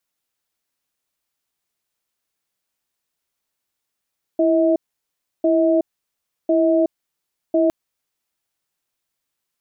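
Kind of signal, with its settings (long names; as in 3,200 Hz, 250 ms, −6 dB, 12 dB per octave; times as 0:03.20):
tone pair in a cadence 331 Hz, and 641 Hz, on 0.37 s, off 0.68 s, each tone −16 dBFS 3.31 s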